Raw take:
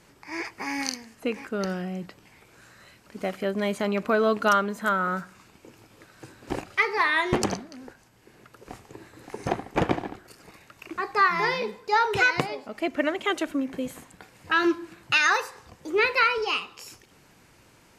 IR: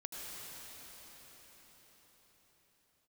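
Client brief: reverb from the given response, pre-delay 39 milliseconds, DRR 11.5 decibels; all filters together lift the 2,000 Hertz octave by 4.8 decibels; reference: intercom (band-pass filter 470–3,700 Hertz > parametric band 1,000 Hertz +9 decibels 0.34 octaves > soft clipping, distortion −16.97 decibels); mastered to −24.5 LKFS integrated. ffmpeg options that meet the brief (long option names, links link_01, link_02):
-filter_complex "[0:a]equalizer=frequency=2000:width_type=o:gain=6,asplit=2[link_01][link_02];[1:a]atrim=start_sample=2205,adelay=39[link_03];[link_02][link_03]afir=irnorm=-1:irlink=0,volume=-11.5dB[link_04];[link_01][link_04]amix=inputs=2:normalize=0,highpass=470,lowpass=3700,equalizer=frequency=1000:width_type=o:width=0.34:gain=9,asoftclip=threshold=-10dB,volume=-1dB"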